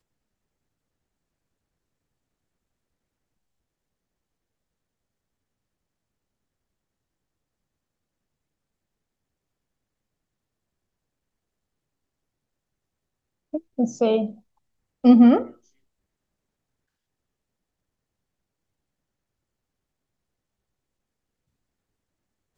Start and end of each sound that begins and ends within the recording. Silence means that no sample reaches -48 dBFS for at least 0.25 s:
13.53–14.39
15.04–15.56

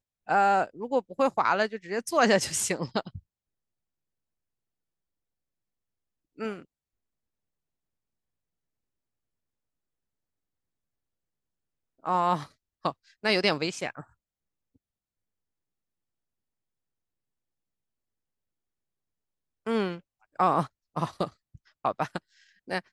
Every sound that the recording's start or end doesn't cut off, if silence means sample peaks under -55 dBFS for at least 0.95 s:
6.37–6.65
12.03–14.76

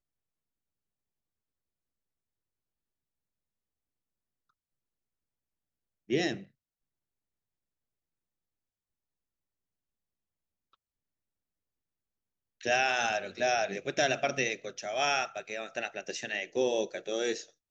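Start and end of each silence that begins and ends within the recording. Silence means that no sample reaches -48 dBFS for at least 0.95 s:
6.45–12.61

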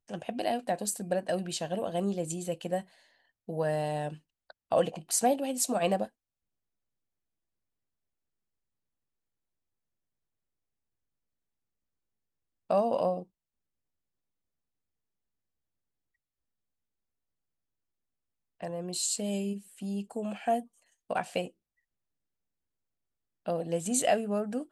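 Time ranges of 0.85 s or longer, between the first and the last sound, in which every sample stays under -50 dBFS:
6.08–12.7
13.24–18.61
21.5–23.46

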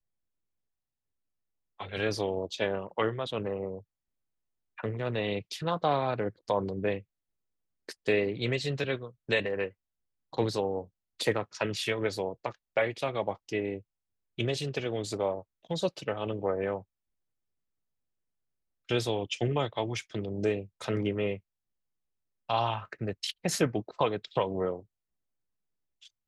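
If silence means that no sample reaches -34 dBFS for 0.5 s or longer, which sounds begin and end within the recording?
1.8–3.78
4.79–6.98
7.89–9.68
10.33–13.78
14.39–16.78
18.89–21.36
22.49–24.77

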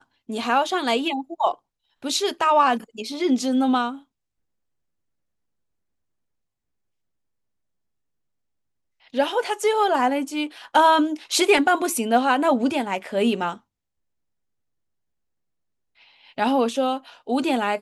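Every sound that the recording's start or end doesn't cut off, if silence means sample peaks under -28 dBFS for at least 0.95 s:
9.15–13.53

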